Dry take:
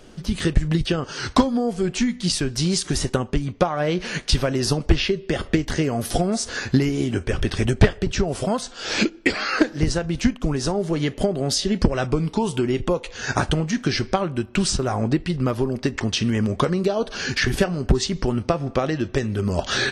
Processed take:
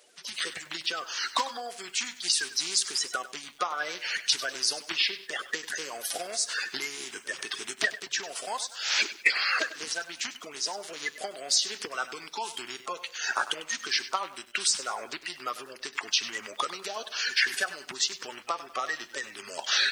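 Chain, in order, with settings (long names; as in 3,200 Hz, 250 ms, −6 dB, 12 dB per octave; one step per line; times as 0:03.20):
spectral magnitudes quantised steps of 30 dB
high-pass filter 1,300 Hz 12 dB per octave
feedback echo at a low word length 98 ms, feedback 35%, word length 8 bits, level −14 dB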